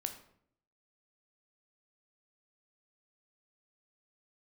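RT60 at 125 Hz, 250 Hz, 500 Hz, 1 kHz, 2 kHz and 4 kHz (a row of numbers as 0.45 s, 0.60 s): 0.85 s, 0.85 s, 0.70 s, 0.60 s, 0.55 s, 0.45 s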